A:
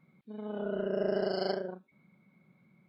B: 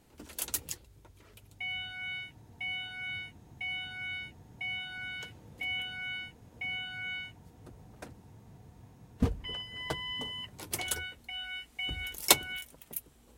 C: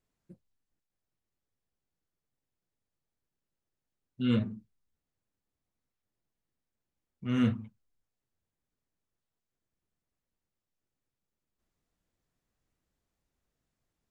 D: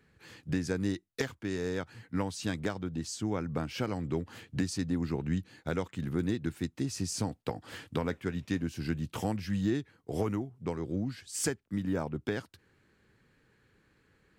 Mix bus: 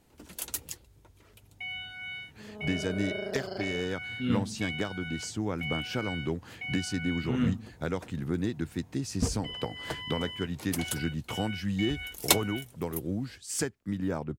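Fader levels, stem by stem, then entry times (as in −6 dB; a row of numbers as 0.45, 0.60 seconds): −6.0, −1.0, −2.0, +0.5 decibels; 2.10, 0.00, 0.00, 2.15 seconds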